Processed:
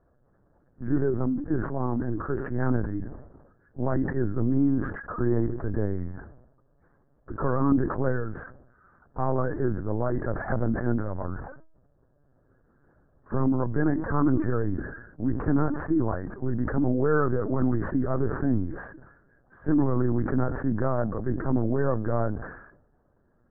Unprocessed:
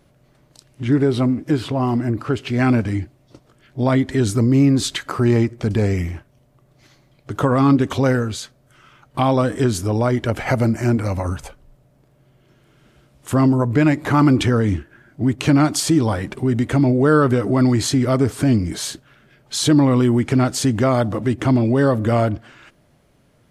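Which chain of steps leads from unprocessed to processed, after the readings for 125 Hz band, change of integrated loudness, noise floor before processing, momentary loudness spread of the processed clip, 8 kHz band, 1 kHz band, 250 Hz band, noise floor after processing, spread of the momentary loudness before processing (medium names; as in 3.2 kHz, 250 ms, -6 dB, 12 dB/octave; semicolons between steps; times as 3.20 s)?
-10.0 dB, -9.0 dB, -57 dBFS, 12 LU, under -40 dB, -9.5 dB, -9.0 dB, -65 dBFS, 11 LU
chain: Chebyshev low-pass 1.7 kHz, order 6; LPC vocoder at 8 kHz pitch kept; decay stretcher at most 66 dB/s; trim -8 dB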